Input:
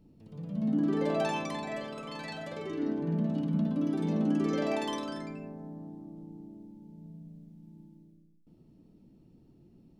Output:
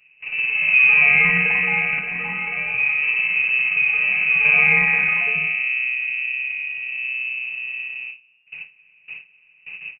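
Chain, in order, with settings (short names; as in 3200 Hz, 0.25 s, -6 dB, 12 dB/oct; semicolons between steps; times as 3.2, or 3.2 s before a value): per-bin compression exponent 0.6; gate with hold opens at -35 dBFS; comb 7.2 ms, depth 94%; 1.99–4.45 flange 1 Hz, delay 0.6 ms, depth 8.2 ms, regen -74%; inverted band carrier 2800 Hz; gain +8.5 dB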